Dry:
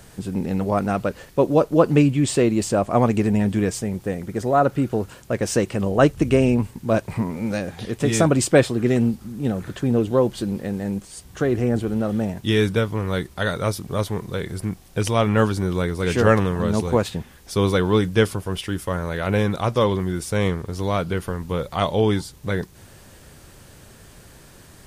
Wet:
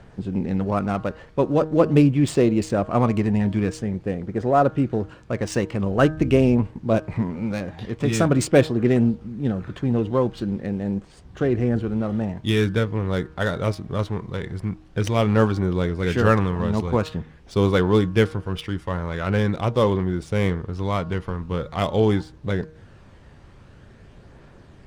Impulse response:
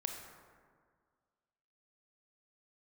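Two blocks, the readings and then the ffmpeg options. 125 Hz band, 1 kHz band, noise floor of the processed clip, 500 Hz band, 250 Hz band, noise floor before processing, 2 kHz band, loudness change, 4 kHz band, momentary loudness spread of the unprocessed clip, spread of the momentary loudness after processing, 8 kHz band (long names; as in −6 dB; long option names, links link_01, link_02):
+0.5 dB, −1.5 dB, −48 dBFS, −1.5 dB, −0.5 dB, −47 dBFS, −2.0 dB, −1.0 dB, −3.0 dB, 10 LU, 10 LU, −7.0 dB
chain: -af "adynamicsmooth=sensitivity=3.5:basefreq=2800,aphaser=in_gain=1:out_gain=1:delay=1.1:decay=0.24:speed=0.45:type=triangular,bandreject=frequency=156.5:width_type=h:width=4,bandreject=frequency=313:width_type=h:width=4,bandreject=frequency=469.5:width_type=h:width=4,bandreject=frequency=626:width_type=h:width=4,bandreject=frequency=782.5:width_type=h:width=4,bandreject=frequency=939:width_type=h:width=4,bandreject=frequency=1095.5:width_type=h:width=4,bandreject=frequency=1252:width_type=h:width=4,bandreject=frequency=1408.5:width_type=h:width=4,bandreject=frequency=1565:width_type=h:width=4,bandreject=frequency=1721.5:width_type=h:width=4,volume=-1.5dB"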